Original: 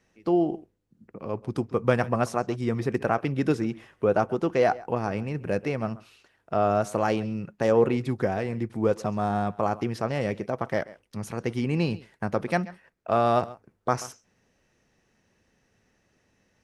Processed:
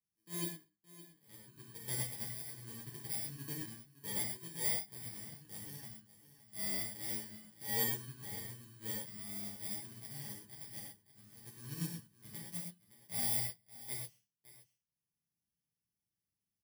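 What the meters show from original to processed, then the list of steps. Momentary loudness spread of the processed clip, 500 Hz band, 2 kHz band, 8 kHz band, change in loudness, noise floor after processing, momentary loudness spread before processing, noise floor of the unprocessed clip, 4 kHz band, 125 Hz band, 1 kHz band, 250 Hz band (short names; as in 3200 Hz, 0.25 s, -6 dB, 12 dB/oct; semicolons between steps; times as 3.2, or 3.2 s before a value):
18 LU, -29.0 dB, -14.0 dB, +4.5 dB, -12.5 dB, under -85 dBFS, 10 LU, -70 dBFS, -2.5 dB, -17.0 dB, -26.5 dB, -22.0 dB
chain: FFT order left unsorted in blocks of 32 samples; transient shaper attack -6 dB, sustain -2 dB; in parallel at -4 dB: sample gate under -22.5 dBFS; on the sum: passive tone stack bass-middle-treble 6-0-2; on a send: echo 0.567 s -11 dB; on the sum: transient shaper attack +4 dB, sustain -6 dB; HPF 73 Hz; bell 820 Hz +7.5 dB 0.25 oct; notches 50/100/150/200 Hz; comb 6.1 ms, depth 36%; non-linear reverb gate 0.15 s flat, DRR -4.5 dB; upward expander 1.5:1, over -43 dBFS; gain -5 dB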